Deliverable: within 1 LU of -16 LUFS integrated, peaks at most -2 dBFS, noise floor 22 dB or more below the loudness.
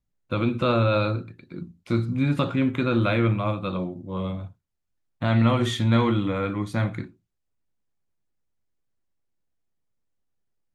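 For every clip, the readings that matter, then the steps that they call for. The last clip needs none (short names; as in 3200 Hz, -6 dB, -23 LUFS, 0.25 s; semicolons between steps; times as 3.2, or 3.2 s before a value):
loudness -24.5 LUFS; peak -7.0 dBFS; loudness target -16.0 LUFS
-> gain +8.5 dB; limiter -2 dBFS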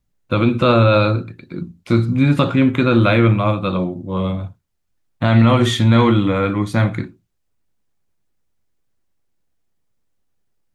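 loudness -16.0 LUFS; peak -2.0 dBFS; noise floor -69 dBFS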